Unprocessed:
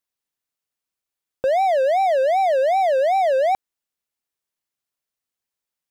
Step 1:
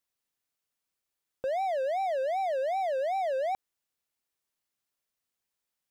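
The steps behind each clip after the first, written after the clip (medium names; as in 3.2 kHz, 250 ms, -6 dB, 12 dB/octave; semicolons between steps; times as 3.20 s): peak limiter -24.5 dBFS, peak gain reduction 11.5 dB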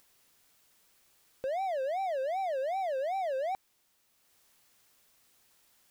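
upward compressor, threshold -47 dBFS; added noise white -69 dBFS; trim -3 dB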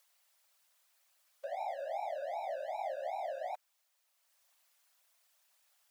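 whisper effect; brick-wall FIR high-pass 520 Hz; trim -6 dB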